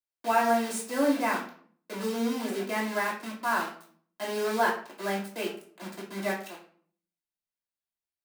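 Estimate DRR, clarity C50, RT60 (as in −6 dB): −4.5 dB, 7.0 dB, 0.50 s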